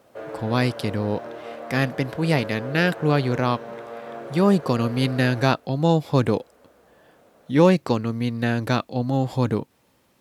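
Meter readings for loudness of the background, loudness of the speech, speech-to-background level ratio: -36.5 LUFS, -22.5 LUFS, 14.0 dB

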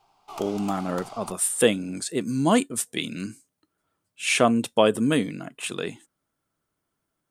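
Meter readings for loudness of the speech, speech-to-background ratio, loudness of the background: -24.5 LUFS, 16.5 dB, -41.0 LUFS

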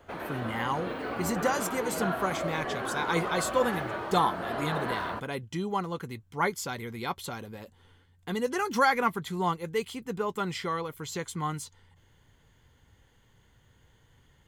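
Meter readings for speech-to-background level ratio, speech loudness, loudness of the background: 2.5 dB, -31.5 LUFS, -34.0 LUFS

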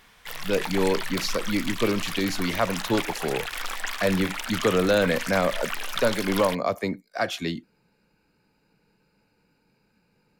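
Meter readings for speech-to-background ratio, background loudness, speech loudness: 5.5 dB, -32.0 LUFS, -26.5 LUFS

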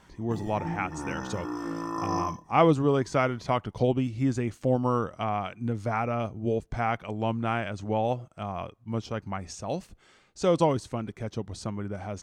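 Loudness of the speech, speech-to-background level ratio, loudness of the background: -29.0 LUFS, 5.5 dB, -34.5 LUFS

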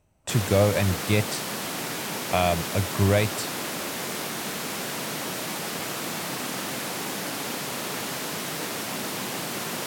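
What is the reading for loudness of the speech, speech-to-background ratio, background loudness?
-25.0 LUFS, 5.0 dB, -30.0 LUFS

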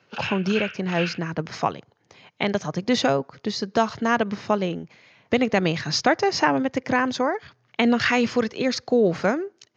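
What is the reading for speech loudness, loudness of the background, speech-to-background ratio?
-23.5 LUFS, -31.5 LUFS, 8.0 dB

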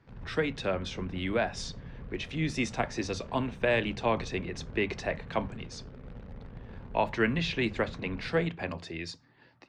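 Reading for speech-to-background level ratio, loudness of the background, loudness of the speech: 14.0 dB, -46.0 LUFS, -32.0 LUFS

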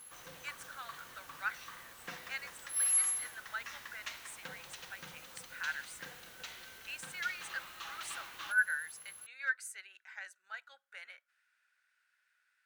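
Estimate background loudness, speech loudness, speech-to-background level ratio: -38.5 LUFS, -41.5 LUFS, -3.0 dB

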